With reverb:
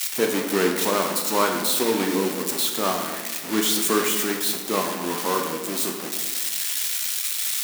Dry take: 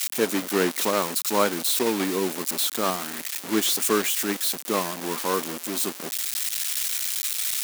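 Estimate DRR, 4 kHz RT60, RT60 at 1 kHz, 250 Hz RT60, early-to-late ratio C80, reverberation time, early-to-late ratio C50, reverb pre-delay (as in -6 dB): 2.0 dB, 0.85 s, 1.3 s, 1.5 s, 7.0 dB, 1.4 s, 5.0 dB, 8 ms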